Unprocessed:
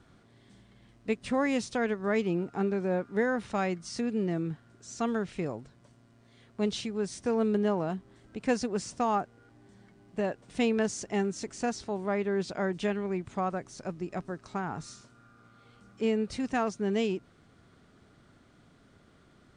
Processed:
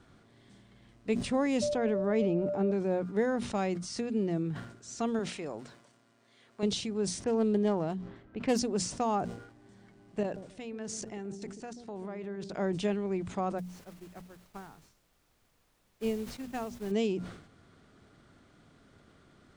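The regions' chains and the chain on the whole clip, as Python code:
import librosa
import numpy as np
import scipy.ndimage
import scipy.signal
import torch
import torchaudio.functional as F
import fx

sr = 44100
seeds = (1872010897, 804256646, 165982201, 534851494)

y = fx.high_shelf(x, sr, hz=3600.0, db=-10.0, at=(1.61, 2.71), fade=0.02)
y = fx.dmg_tone(y, sr, hz=590.0, level_db=-35.0, at=(1.61, 2.71), fade=0.02)
y = fx.sustainer(y, sr, db_per_s=24.0, at=(1.61, 2.71), fade=0.02)
y = fx.chain(y, sr, fx.highpass(hz=490.0, slope=6),
    fx.transient(attack_db=-2, sustain_db=5), at=(5.19, 6.63))
y = fx.chain(y, sr, fx.self_delay(depth_ms=0.11),
    fx.env_lowpass(base_hz=1800.0, full_db=-25.0), at=(7.24, 8.59))
y = fx.chain(y, sr, fx.level_steps(step_db=20),
    fx.echo_wet_lowpass(ms=135, feedback_pct=42, hz=410.0, wet_db=-6.0), at=(10.23, 12.54))
y = fx.dmg_noise_colour(y, sr, seeds[0], colour='pink', level_db=-44.0, at=(13.58, 16.9), fade=0.02)
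y = fx.upward_expand(y, sr, threshold_db=-41.0, expansion=2.5, at=(13.58, 16.9), fade=0.02)
y = fx.hum_notches(y, sr, base_hz=60, count=4)
y = fx.dynamic_eq(y, sr, hz=1600.0, q=0.98, threshold_db=-47.0, ratio=4.0, max_db=-7)
y = fx.sustainer(y, sr, db_per_s=83.0)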